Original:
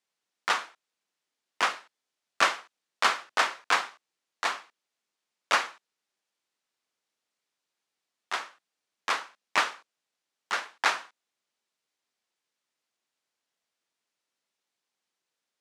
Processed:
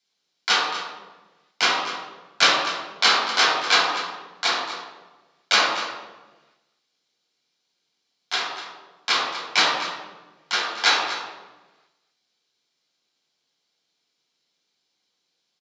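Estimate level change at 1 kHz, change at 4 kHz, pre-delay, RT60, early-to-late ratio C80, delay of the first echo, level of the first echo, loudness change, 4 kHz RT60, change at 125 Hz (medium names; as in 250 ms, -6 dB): +5.5 dB, +13.0 dB, 3 ms, 1.2 s, 3.0 dB, 245 ms, -12.0 dB, +7.5 dB, 0.85 s, no reading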